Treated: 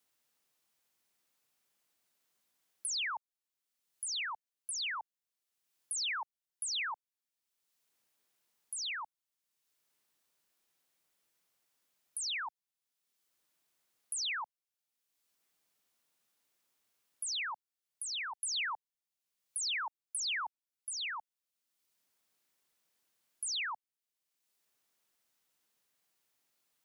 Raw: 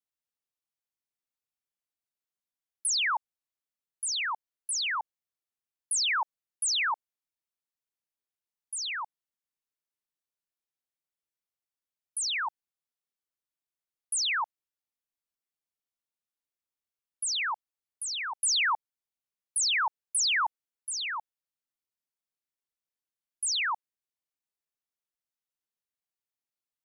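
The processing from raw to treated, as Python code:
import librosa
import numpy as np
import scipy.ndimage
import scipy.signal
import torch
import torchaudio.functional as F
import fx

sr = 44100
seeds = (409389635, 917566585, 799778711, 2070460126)

y = fx.band_squash(x, sr, depth_pct=70)
y = y * 10.0 ** (-7.0 / 20.0)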